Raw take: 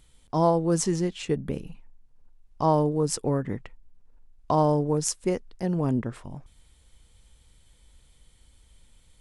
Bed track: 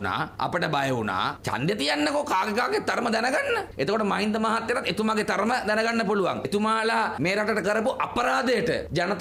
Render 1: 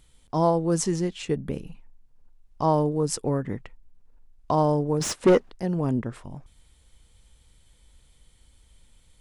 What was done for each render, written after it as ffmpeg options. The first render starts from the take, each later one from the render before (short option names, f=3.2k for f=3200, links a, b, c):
-filter_complex "[0:a]asplit=3[a][b][c];[a]afade=t=out:st=5:d=0.02[d];[b]asplit=2[e][f];[f]highpass=f=720:p=1,volume=30dB,asoftclip=type=tanh:threshold=-7dB[g];[e][g]amix=inputs=2:normalize=0,lowpass=f=1.1k:p=1,volume=-6dB,afade=t=in:st=5:d=0.02,afade=t=out:st=5.5:d=0.02[h];[c]afade=t=in:st=5.5:d=0.02[i];[d][h][i]amix=inputs=3:normalize=0"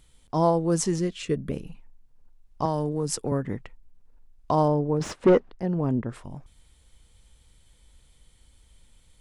-filter_complex "[0:a]asettb=1/sr,asplit=3[a][b][c];[a]atrim=end=0.984[d];[b]atrim=start=0.98:end=1.52,asetpts=PTS-STARTPTS,afade=t=in:d=0.004:c=qsin,afade=t=out:st=0.536:d=0.004:c=qsin,asuperstop=centerf=840:order=12:qfactor=2.9[e];[c]atrim=start=1.516[f];[d][e]acrossfade=d=0.004:c1=hsin:c2=qsin[g];[g][f]acrossfade=d=0.004:c1=qsin:c2=hsin,asettb=1/sr,asplit=3[h][i][j];[h]atrim=end=2.654[k];[i]atrim=start=2.65:end=3.32,asetpts=PTS-STARTPTS,afade=t=in:d=0.004:c=qsin,afade=t=out:st=0.666:d=0.004:c=qsin,acrossover=split=120|3000[l][m][n];[m]acompressor=threshold=-24dB:ratio=2.5:attack=3.2:release=140:knee=2.83:detection=peak[o];[l][o][n]amix=inputs=3:normalize=0[p];[j]atrim=start=3.316[q];[k][p]acrossfade=d=0.004:c1=hsin:c2=qsin[r];[r][q]acrossfade=d=0.004:c1=qsin:c2=hsin,asettb=1/sr,asplit=3[s][t][u];[s]atrim=end=4.684[v];[t]atrim=start=4.68:end=6.09,asetpts=PTS-STARTPTS,afade=t=in:d=0.004:c=qsin,afade=t=out:st=1.406:d=0.004:c=qsin,lowpass=f=2k:p=1[w];[u]atrim=start=6.086[x];[v][w]acrossfade=d=0.004:c1=hsin:c2=qsin[y];[y][x]acrossfade=d=0.004:c1=qsin:c2=hsin"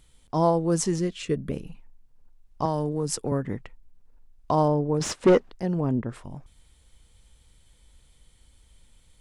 -filter_complex "[0:a]asettb=1/sr,asplit=3[a][b][c];[a]atrim=end=4.944[d];[b]atrim=start=4.94:end=5.81,asetpts=PTS-STARTPTS,afade=t=in:d=0.004:c=qsin,afade=t=out:st=0.866:d=0.004:c=qsin,equalizer=f=8.1k:t=o:w=2.6:g=8.5[e];[c]atrim=start=5.806[f];[d][e]acrossfade=d=0.004:c1=hsin:c2=qsin[g];[g][f]acrossfade=d=0.004:c1=qsin:c2=hsin"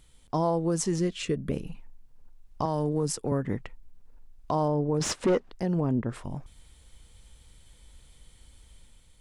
-af "dynaudnorm=f=130:g=7:m=3.5dB,alimiter=limit=-17.5dB:level=0:latency=1:release=320"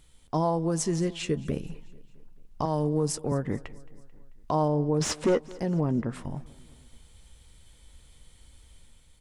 -filter_complex "[0:a]asplit=2[a][b];[b]adelay=13,volume=-13dB[c];[a][c]amix=inputs=2:normalize=0,aecho=1:1:220|440|660|880:0.0794|0.0453|0.0258|0.0147"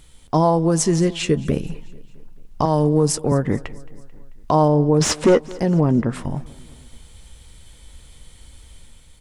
-af "volume=9.5dB"